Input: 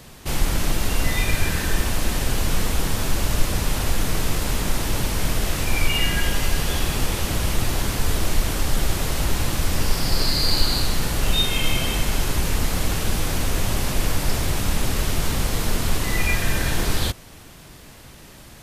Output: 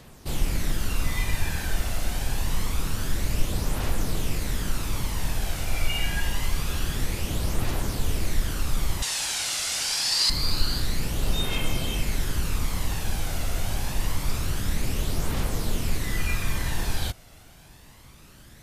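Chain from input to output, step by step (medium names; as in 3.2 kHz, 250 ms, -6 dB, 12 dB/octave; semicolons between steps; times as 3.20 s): 9.02–10.30 s: frequency weighting ITU-R 468; phaser 0.26 Hz, delay 1.5 ms, feedback 37%; trim -7.5 dB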